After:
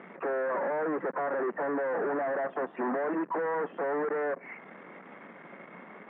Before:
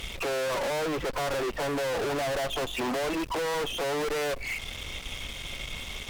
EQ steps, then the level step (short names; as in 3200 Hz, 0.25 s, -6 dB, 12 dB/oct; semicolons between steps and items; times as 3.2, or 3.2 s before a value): Chebyshev band-pass 180–1800 Hz, order 4; 0.0 dB